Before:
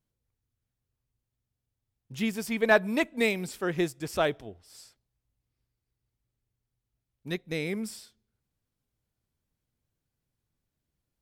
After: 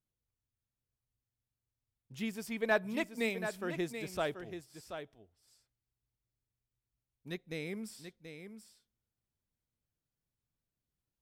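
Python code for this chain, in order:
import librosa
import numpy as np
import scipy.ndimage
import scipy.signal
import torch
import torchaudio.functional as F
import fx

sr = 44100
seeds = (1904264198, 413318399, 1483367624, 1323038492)

y = x + 10.0 ** (-9.0 / 20.0) * np.pad(x, (int(732 * sr / 1000.0), 0))[:len(x)]
y = F.gain(torch.from_numpy(y), -8.5).numpy()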